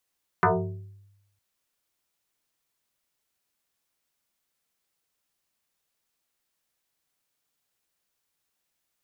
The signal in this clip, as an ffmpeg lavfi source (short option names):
-f lavfi -i "aevalsrc='0.178*pow(10,-3*t/0.97)*sin(2*PI*100*t+5.9*pow(10,-3*t/0.86)*sin(2*PI*2.76*100*t))':d=0.96:s=44100"